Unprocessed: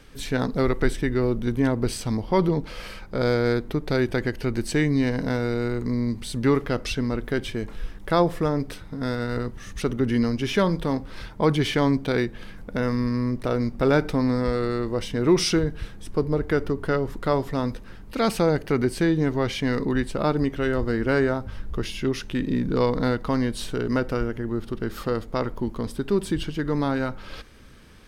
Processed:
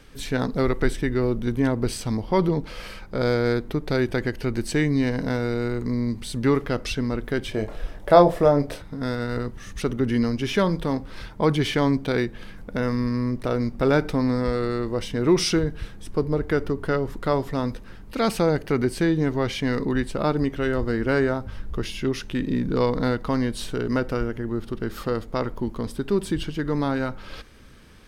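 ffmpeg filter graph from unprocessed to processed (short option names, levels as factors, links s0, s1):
-filter_complex "[0:a]asettb=1/sr,asplit=3[s0][s1][s2];[s0]atrim=end=7.514[s3];[s1]atrim=start=7.51:end=8.82,asetpts=PTS-STARTPTS,afade=t=in:d=0.004:c=qsin,afade=t=out:st=1.306:d=0.004:c=qsin,equalizer=f=630:t=o:w=0.77:g=12.5,asplit=2[s4][s5];[s5]adelay=28,volume=0.422[s6];[s4][s6]amix=inputs=2:normalize=0,atrim=end_sample=57771[s7];[s2]atrim=start=8.816[s8];[s3][s7]acrossfade=d=0.004:c1=hsin:c2=qsin[s9];[s9][s8]acrossfade=d=0.004:c1=qsin:c2=hsin"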